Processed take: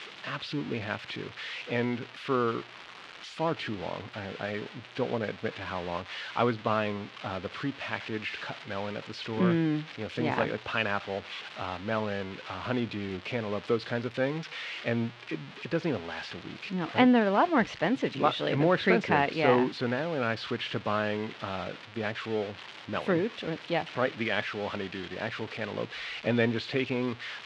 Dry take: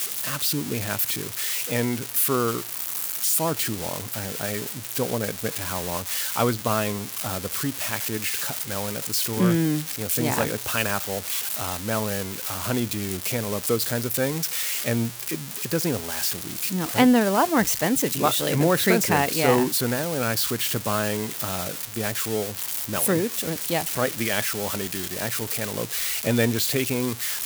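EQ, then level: LPF 3400 Hz 24 dB/oct; low shelf 120 Hz -8.5 dB; -3.0 dB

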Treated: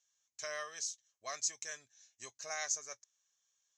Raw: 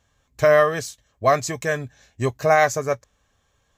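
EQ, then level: band-pass 6300 Hz, Q 3.8; air absorption 55 m; +2.5 dB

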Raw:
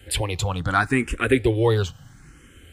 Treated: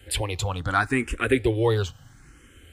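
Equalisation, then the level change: bell 170 Hz -6 dB 0.58 oct; -2.0 dB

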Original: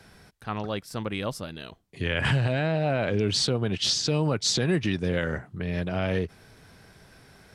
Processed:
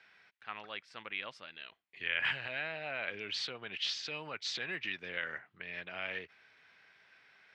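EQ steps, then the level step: band-pass 2300 Hz, Q 1.8; air absorption 87 m; 0.0 dB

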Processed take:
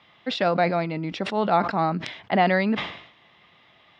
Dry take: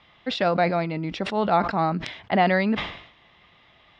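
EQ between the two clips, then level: HPF 110 Hz 12 dB/oct; 0.0 dB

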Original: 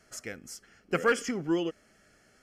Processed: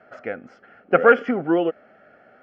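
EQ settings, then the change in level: speaker cabinet 110–2800 Hz, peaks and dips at 250 Hz +3 dB, 750 Hz +9 dB, 1400 Hz +9 dB; bell 240 Hz +2.5 dB 0.25 oct; bell 560 Hz +10.5 dB 0.8 oct; +4.0 dB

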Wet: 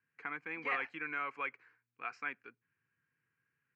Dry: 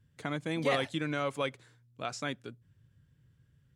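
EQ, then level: speaker cabinet 460–4000 Hz, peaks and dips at 480 Hz +4 dB, 700 Hz +8 dB, 1100 Hz +3 dB, 1600 Hz +4 dB, 2400 Hz +10 dB, 3500 Hz +4 dB; fixed phaser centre 1500 Hz, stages 4; -4.0 dB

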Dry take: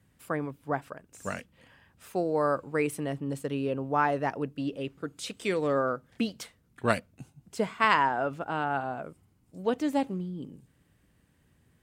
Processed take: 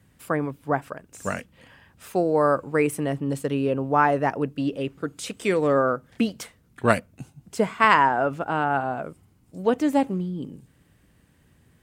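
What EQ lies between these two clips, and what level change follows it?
dynamic EQ 4000 Hz, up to -6 dB, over -50 dBFS, Q 1.4; +6.5 dB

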